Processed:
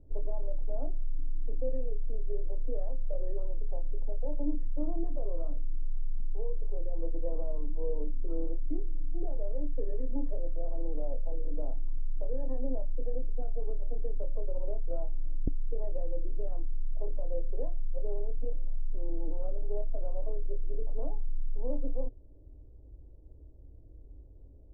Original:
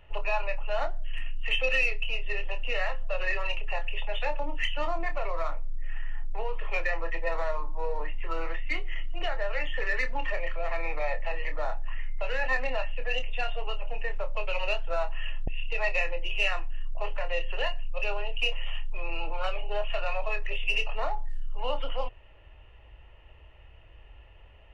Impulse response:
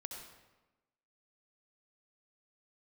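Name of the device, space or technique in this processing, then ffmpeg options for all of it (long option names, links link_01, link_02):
under water: -filter_complex "[0:a]lowpass=frequency=450:width=0.5412,lowpass=frequency=450:width=1.3066,equalizer=frequency=280:width_type=o:width=0.4:gain=10.5,asettb=1/sr,asplit=3[link_01][link_02][link_03];[link_01]atrim=end=6.204[link_04];[link_02]atrim=start=6.2:end=6.99,asetpts=PTS-STARTPTS,afade=type=in:duration=0.004:curve=qsin,afade=type=out:start_time=0.786:duration=0.004:curve=qsin,equalizer=frequency=250:width_type=o:width=0.67:gain=-8,equalizer=frequency=630:width_type=o:width=0.67:gain=-3,equalizer=frequency=1600:width_type=o:width=0.67:gain=-8[link_05];[link_03]atrim=start=6.986[link_06];[link_04][link_05]acrossfade=duration=0.004:curve1=hsin:curve2=qsin[link_07];[link_07][link_06]acrossfade=duration=0.004:curve1=qsin:curve2=hsin,volume=1dB"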